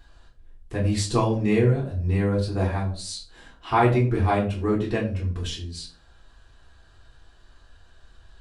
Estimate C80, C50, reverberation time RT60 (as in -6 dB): 12.5 dB, 9.0 dB, 0.40 s